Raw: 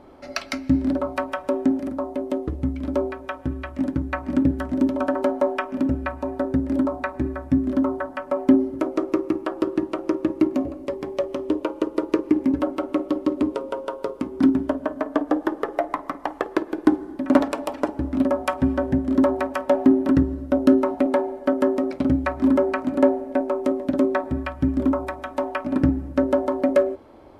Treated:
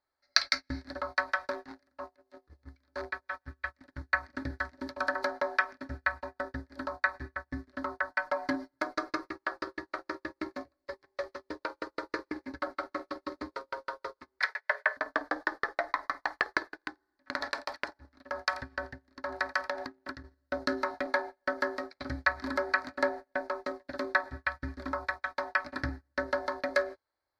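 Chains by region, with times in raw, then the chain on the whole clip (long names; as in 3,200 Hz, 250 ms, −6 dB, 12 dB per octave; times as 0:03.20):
0:01.51–0:03.36: transient designer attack −6 dB, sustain +2 dB + hard clipping −18 dBFS
0:08.11–0:09.30: parametric band 760 Hz +2.5 dB 0.57 octaves + comb filter 6.6 ms, depth 66%
0:14.39–0:14.97: Chebyshev high-pass filter 420 Hz, order 10 + parametric band 2,000 Hz +14.5 dB 0.81 octaves
0:16.64–0:20.24: single-tap delay 86 ms −20 dB + downward compressor, threshold −20 dBFS
whole clip: drawn EQ curve 110 Hz 0 dB, 170 Hz −12 dB, 330 Hz −7 dB, 1,100 Hz +10 dB, 1,700 Hz +12 dB, 2,900 Hz −12 dB, 4,300 Hz +14 dB, 7,800 Hz −4 dB; noise gate −26 dBFS, range −30 dB; high shelf with overshoot 1,600 Hz +9.5 dB, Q 1.5; level −11.5 dB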